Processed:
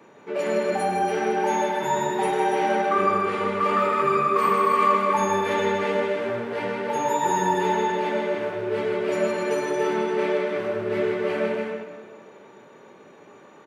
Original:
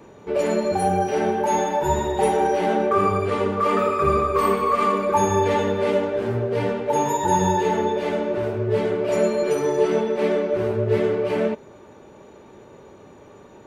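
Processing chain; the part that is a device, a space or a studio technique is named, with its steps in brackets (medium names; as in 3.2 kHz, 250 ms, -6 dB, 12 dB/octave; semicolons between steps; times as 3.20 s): stadium PA (high-pass 140 Hz 24 dB/octave; peaking EQ 1.8 kHz +7 dB 1.9 oct; loudspeakers at several distances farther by 54 m -5 dB, 97 m -7 dB; reverberation RT60 1.9 s, pre-delay 11 ms, DRR 7 dB); trim -6.5 dB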